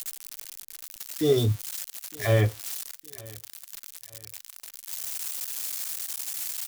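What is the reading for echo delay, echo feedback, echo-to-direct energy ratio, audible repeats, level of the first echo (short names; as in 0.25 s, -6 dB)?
0.912 s, 37%, -23.0 dB, 2, -23.5 dB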